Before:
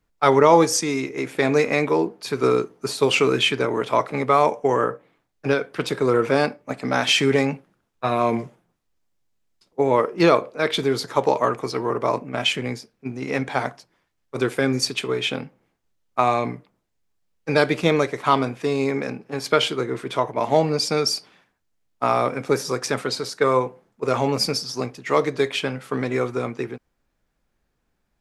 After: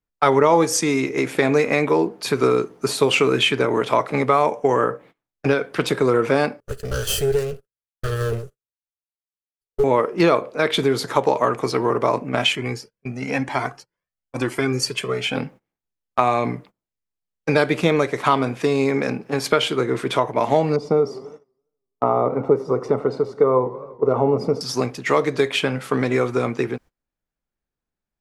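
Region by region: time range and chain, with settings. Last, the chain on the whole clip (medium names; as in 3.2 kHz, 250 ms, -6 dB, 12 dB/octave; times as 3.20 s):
6.60–9.84 s: comb filter that takes the minimum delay 0.65 ms + FFT filter 100 Hz 0 dB, 150 Hz -11 dB, 290 Hz -25 dB, 420 Hz +3 dB, 940 Hz -23 dB, 1.4 kHz -10 dB, 2 kHz -17 dB, 3.1 kHz -12 dB, 5.2 kHz -7 dB, 13 kHz +4 dB + gate -49 dBFS, range -17 dB
12.55–15.36 s: band-stop 3.7 kHz, Q 6.7 + Shepard-style flanger rising 1 Hz
20.76–24.61 s: Savitzky-Golay filter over 65 samples + peaking EQ 430 Hz +6 dB 0.22 oct + modulated delay 83 ms, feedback 64%, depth 175 cents, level -20 dB
whole clip: gate -47 dBFS, range -22 dB; dynamic bell 5.1 kHz, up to -4 dB, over -39 dBFS, Q 1.6; compression 2:1, threshold -26 dBFS; trim +7.5 dB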